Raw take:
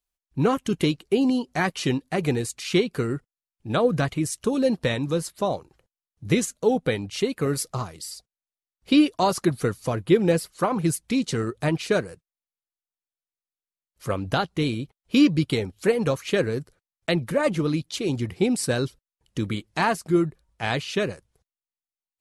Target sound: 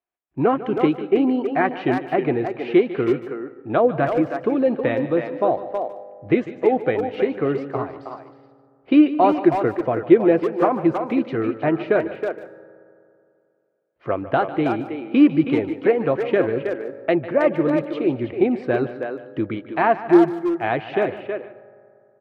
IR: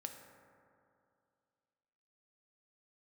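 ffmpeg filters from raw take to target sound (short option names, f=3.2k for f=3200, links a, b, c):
-filter_complex "[0:a]highpass=140,equalizer=f=180:t=q:w=4:g=-8,equalizer=f=340:t=q:w=4:g=7,equalizer=f=690:t=q:w=4:g=8,lowpass=f=2.4k:w=0.5412,lowpass=f=2.4k:w=1.3066,asplit=2[a][b];[b]adelay=320,highpass=300,lowpass=3.4k,asoftclip=type=hard:threshold=-12.5dB,volume=-6dB[c];[a][c]amix=inputs=2:normalize=0,asplit=2[d][e];[1:a]atrim=start_sample=2205,highshelf=f=7.1k:g=11,adelay=149[f];[e][f]afir=irnorm=-1:irlink=0,volume=-11.5dB[g];[d][g]amix=inputs=2:normalize=0,volume=1.5dB"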